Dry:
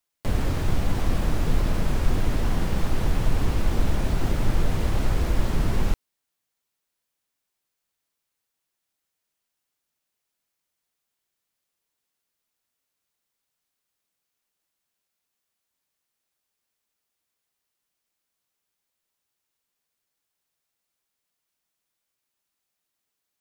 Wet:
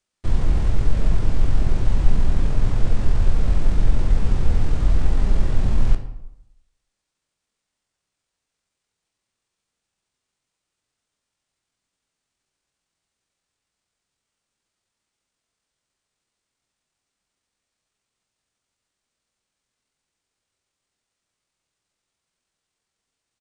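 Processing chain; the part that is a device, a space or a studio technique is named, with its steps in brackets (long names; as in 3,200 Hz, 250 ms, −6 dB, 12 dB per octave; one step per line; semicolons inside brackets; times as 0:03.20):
monster voice (pitch shifter −9 semitones; formants moved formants −5 semitones; low-shelf EQ 180 Hz +7.5 dB; convolution reverb RT60 0.80 s, pre-delay 11 ms, DRR 6.5 dB)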